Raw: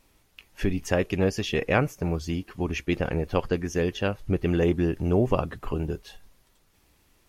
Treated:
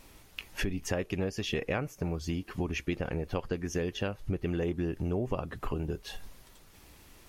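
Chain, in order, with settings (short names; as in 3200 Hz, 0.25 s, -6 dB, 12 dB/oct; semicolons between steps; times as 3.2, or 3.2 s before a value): compressor 4:1, threshold -40 dBFS, peak gain reduction 19.5 dB; gain +8 dB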